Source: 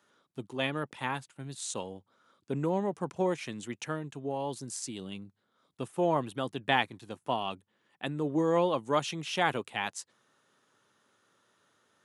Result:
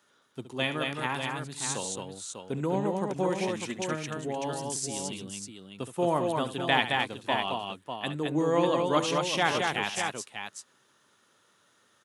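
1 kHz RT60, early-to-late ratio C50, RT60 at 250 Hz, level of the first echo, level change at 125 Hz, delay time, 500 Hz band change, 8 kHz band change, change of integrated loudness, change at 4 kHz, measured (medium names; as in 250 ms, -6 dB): no reverb, no reverb, no reverb, -12.0 dB, +2.5 dB, 69 ms, +2.5 dB, +7.0 dB, +3.0 dB, +6.0 dB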